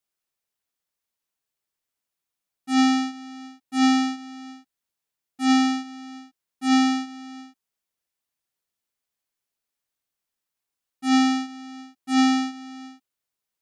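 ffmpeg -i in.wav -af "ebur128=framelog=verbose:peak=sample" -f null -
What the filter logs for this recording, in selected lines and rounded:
Integrated loudness:
  I:         -22.4 LUFS
  Threshold: -34.8 LUFS
Loudness range:
  LRA:         3.6 LU
  Threshold: -46.8 LUFS
  LRA low:   -28.8 LUFS
  LRA high:  -25.2 LUFS
Sample peak:
  Peak:      -11.8 dBFS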